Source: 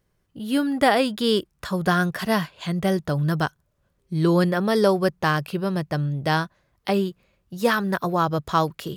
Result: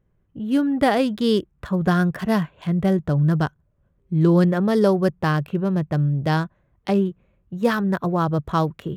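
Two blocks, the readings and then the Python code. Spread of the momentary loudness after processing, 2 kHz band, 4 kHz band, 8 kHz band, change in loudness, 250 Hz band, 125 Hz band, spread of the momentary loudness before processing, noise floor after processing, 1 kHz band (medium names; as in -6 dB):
7 LU, -3.0 dB, -4.5 dB, no reading, +2.0 dB, +3.5 dB, +4.5 dB, 9 LU, -65 dBFS, -1.5 dB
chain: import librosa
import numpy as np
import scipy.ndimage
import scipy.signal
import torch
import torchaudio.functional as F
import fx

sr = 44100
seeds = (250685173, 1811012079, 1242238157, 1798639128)

y = fx.wiener(x, sr, points=9)
y = fx.low_shelf(y, sr, hz=390.0, db=9.0)
y = F.gain(torch.from_numpy(y), -3.0).numpy()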